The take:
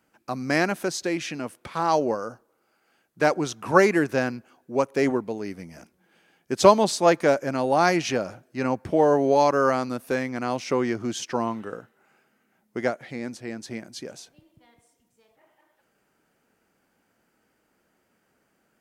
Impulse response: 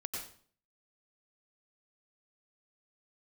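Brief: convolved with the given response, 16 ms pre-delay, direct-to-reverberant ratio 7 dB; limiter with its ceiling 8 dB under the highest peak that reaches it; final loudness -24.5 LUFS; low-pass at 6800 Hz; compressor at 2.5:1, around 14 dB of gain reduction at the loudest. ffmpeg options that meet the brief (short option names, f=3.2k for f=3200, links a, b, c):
-filter_complex "[0:a]lowpass=6.8k,acompressor=threshold=-31dB:ratio=2.5,alimiter=limit=-22dB:level=0:latency=1,asplit=2[a][b];[1:a]atrim=start_sample=2205,adelay=16[c];[b][c]afir=irnorm=-1:irlink=0,volume=-7.5dB[d];[a][d]amix=inputs=2:normalize=0,volume=9.5dB"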